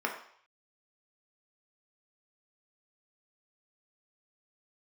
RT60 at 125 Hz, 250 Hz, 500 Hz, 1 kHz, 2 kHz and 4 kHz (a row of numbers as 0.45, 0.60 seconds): 0.60, 0.45, 0.55, 0.60, 0.60, 0.65 seconds